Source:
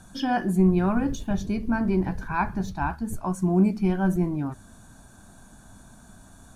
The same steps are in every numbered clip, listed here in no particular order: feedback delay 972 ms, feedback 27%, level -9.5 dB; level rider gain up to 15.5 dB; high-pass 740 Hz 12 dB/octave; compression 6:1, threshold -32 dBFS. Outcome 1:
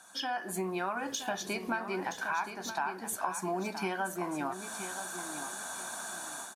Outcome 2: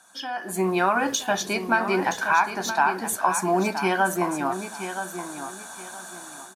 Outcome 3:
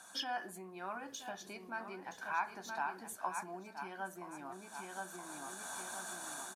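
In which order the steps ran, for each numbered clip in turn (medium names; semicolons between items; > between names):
high-pass > level rider > compression > feedback delay; high-pass > compression > level rider > feedback delay; level rider > feedback delay > compression > high-pass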